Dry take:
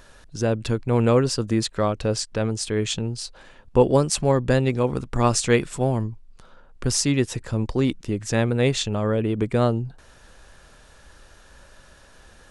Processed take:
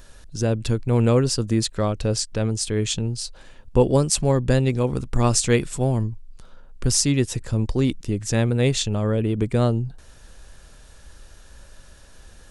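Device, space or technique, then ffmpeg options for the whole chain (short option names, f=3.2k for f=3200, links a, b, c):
smiley-face EQ: -af "lowshelf=f=100:g=7,equalizer=f=1.2k:t=o:w=2.3:g=-3.5,highshelf=f=5.5k:g=5.5"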